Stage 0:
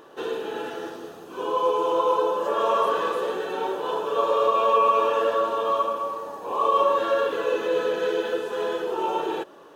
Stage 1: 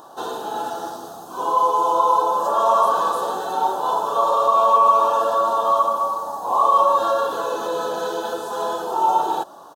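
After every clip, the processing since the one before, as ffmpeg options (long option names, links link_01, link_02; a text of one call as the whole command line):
ffmpeg -i in.wav -filter_complex "[0:a]asplit=2[link_01][link_02];[link_02]alimiter=limit=-18dB:level=0:latency=1,volume=-3dB[link_03];[link_01][link_03]amix=inputs=2:normalize=0,firequalizer=gain_entry='entry(220,0);entry(450,-8);entry(720,10);entry(1400,1);entry(2100,-18);entry(3800,4);entry(7900,9)':delay=0.05:min_phase=1,volume=-1.5dB" out.wav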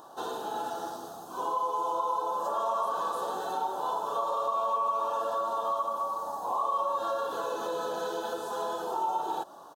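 ffmpeg -i in.wav -af "acompressor=threshold=-23dB:ratio=2.5,volume=-6.5dB" out.wav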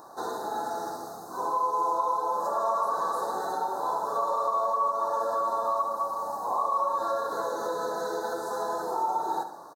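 ffmpeg -i in.wav -filter_complex "[0:a]asuperstop=centerf=2800:order=12:qfactor=1.6,asplit=2[link_01][link_02];[link_02]aecho=0:1:70|140|210|280|350:0.316|0.136|0.0585|0.0251|0.0108[link_03];[link_01][link_03]amix=inputs=2:normalize=0,volume=2dB" out.wav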